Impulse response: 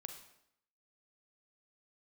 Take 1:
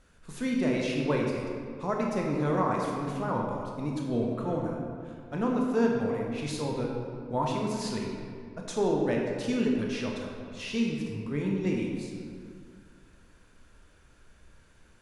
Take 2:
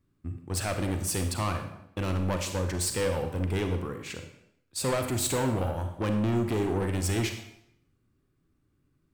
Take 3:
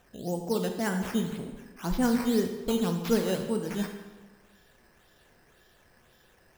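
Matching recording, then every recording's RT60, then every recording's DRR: 2; 2.1, 0.75, 1.3 seconds; −1.0, 5.5, 4.5 decibels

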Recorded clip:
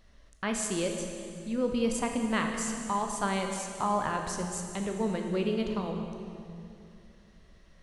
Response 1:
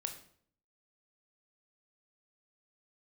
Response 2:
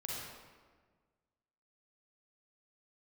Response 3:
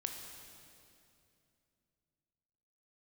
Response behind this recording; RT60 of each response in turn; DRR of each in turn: 3; 0.60, 1.5, 2.7 seconds; 5.0, −5.0, 3.0 decibels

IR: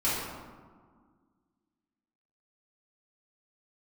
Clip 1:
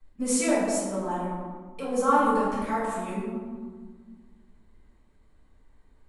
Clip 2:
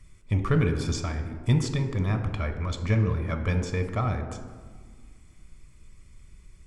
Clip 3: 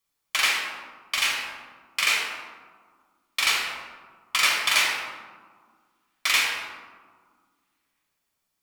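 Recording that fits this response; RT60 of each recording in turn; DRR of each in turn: 1; 1.7, 1.7, 1.7 seconds; −11.0, 6.0, −2.5 decibels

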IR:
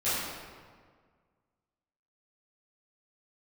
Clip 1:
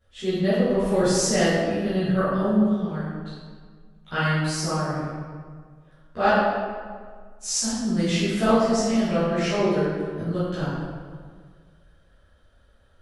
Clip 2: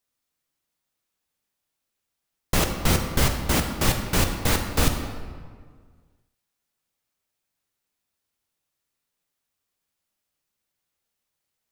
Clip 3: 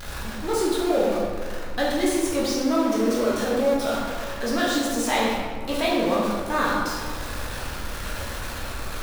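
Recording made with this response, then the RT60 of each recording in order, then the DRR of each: 1; 1.7, 1.7, 1.7 seconds; −15.5, 3.5, −6.0 decibels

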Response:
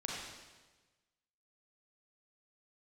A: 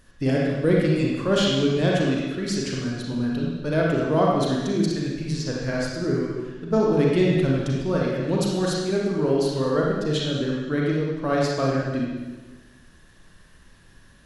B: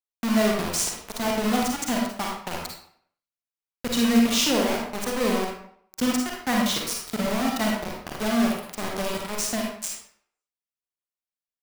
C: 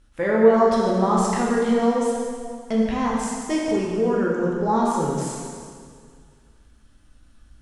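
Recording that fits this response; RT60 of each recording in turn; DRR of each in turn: A; 1.3, 0.60, 2.0 seconds; −3.5, −1.0, −4.0 decibels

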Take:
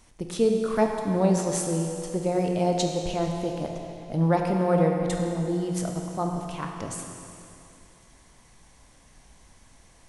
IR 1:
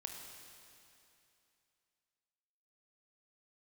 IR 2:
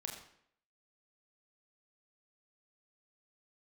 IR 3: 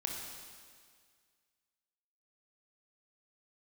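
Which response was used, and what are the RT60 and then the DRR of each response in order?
1; 2.7, 0.65, 1.9 seconds; 2.0, 0.0, −0.5 decibels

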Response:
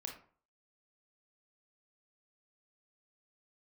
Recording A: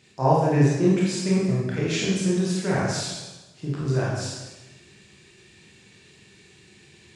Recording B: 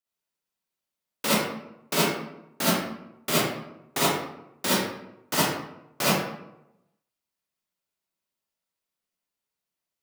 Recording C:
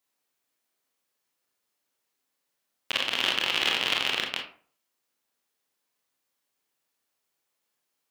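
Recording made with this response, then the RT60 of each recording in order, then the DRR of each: C; 1.1, 0.85, 0.45 seconds; −6.5, −9.0, 1.0 decibels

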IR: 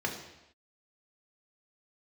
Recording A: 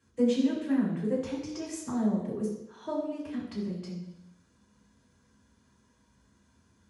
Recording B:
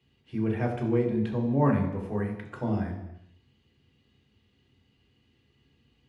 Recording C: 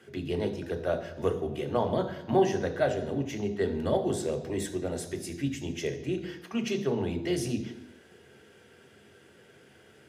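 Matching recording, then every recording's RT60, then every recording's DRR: B; non-exponential decay, non-exponential decay, non-exponential decay; −6.0, 0.0, 6.0 decibels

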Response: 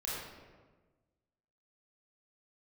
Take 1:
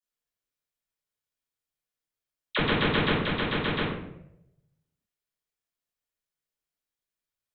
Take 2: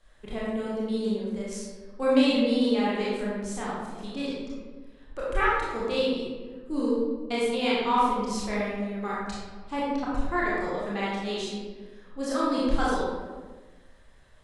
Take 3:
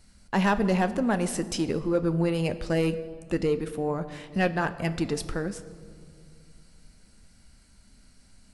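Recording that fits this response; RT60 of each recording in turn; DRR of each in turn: 2; 0.80, 1.4, 2.2 seconds; −11.0, −7.5, 10.0 decibels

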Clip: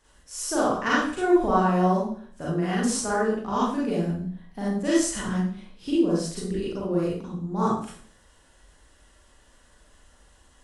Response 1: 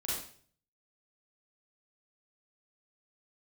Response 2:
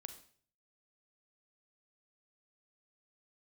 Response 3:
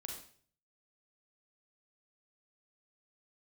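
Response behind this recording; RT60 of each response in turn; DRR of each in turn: 1; 0.50, 0.50, 0.50 seconds; −7.5, 8.0, 0.5 decibels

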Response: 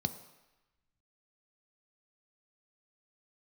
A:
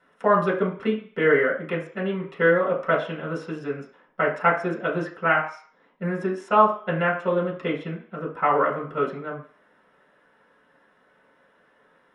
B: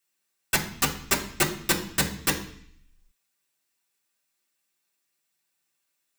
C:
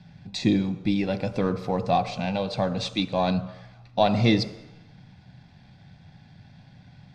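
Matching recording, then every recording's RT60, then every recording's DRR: C; 0.45, 0.60, 1.0 seconds; −5.0, −3.0, 9.0 decibels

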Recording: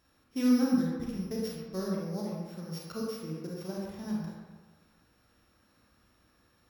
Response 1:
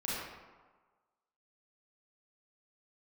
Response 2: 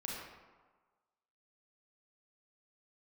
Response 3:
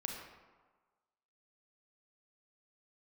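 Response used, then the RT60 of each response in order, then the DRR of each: 2; 1.4, 1.4, 1.4 seconds; −8.0, −4.0, 1.0 decibels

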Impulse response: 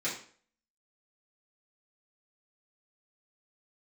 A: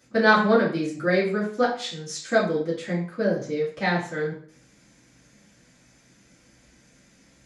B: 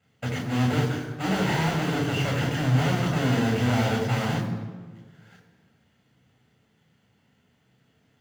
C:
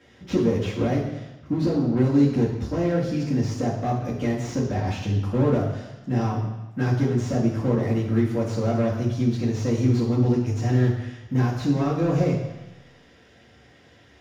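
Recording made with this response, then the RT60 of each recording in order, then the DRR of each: A; 0.50, 1.4, 1.1 seconds; −9.5, 1.0, −6.5 decibels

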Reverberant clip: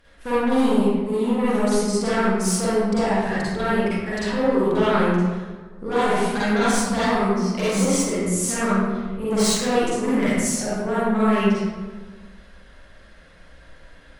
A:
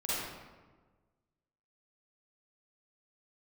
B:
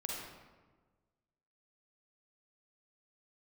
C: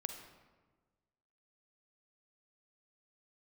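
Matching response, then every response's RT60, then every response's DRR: A; 1.4, 1.4, 1.4 seconds; −10.5, −3.0, 6.0 decibels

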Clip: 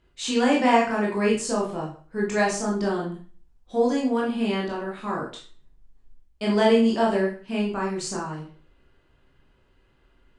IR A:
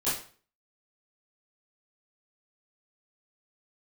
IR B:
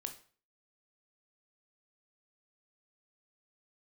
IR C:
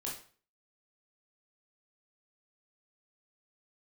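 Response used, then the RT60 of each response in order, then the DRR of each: C; 0.45, 0.45, 0.45 seconds; −13.0, 6.0, −4.0 decibels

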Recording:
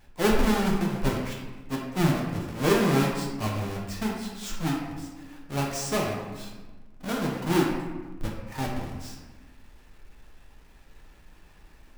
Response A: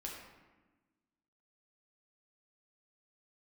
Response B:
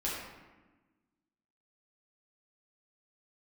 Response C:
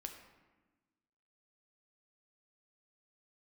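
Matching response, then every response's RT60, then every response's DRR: A; 1.2, 1.2, 1.2 seconds; −2.5, −7.0, 4.0 decibels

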